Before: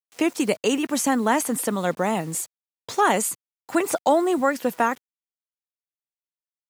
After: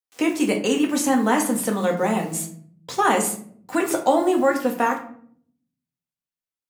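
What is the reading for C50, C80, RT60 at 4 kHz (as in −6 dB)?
9.5 dB, 14.0 dB, 0.35 s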